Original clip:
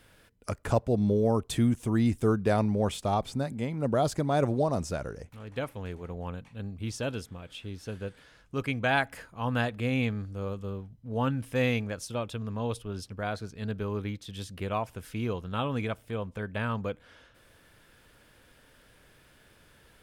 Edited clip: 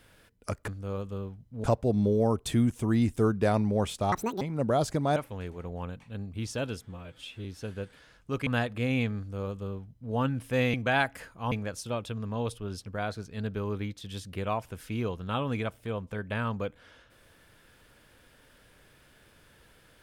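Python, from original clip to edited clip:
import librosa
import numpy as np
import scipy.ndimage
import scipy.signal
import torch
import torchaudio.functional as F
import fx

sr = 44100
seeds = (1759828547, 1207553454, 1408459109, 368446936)

y = fx.edit(x, sr, fx.speed_span(start_s=3.16, length_s=0.49, speed=1.68),
    fx.cut(start_s=4.4, length_s=1.21),
    fx.stretch_span(start_s=7.28, length_s=0.41, factor=1.5),
    fx.move(start_s=8.71, length_s=0.78, to_s=11.76),
    fx.duplicate(start_s=10.2, length_s=0.96, to_s=0.68), tone=tone)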